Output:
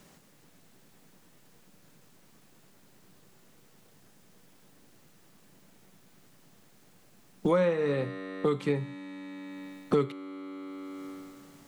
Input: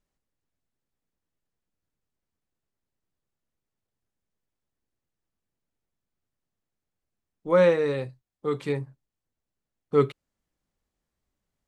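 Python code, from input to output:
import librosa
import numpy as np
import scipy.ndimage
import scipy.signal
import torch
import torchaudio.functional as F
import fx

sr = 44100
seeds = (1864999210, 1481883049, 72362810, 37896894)

y = fx.low_shelf_res(x, sr, hz=100.0, db=-13.0, q=1.5)
y = fx.comb_fb(y, sr, f0_hz=95.0, decay_s=1.8, harmonics='all', damping=0.0, mix_pct=70)
y = fx.band_squash(y, sr, depth_pct=100)
y = y * librosa.db_to_amplitude(7.5)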